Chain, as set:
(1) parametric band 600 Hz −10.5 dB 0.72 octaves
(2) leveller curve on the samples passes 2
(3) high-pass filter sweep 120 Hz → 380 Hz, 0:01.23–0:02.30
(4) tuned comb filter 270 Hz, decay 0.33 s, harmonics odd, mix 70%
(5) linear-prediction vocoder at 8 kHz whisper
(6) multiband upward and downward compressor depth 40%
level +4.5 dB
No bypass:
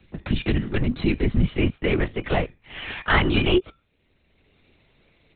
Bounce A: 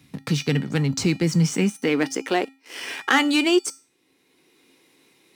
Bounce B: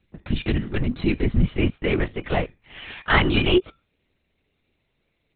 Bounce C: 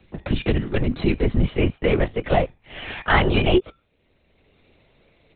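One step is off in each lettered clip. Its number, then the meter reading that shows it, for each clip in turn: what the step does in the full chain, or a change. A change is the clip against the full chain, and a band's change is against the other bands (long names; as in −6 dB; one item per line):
5, 4 kHz band +1.5 dB
6, change in crest factor +1.5 dB
1, 1 kHz band +3.5 dB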